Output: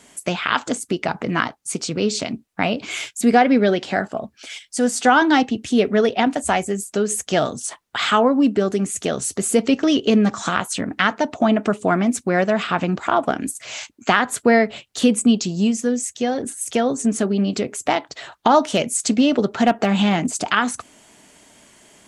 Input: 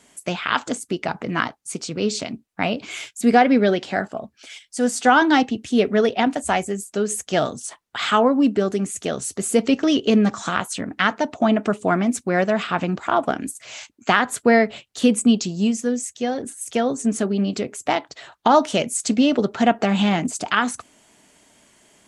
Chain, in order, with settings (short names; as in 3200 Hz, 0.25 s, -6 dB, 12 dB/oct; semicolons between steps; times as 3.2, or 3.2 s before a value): in parallel at +1 dB: compressor 4:1, threshold -27 dBFS, peak gain reduction 14.5 dB; 18.59–20.32 on the sum: hard clip -6 dBFS, distortion -38 dB; gain -1.5 dB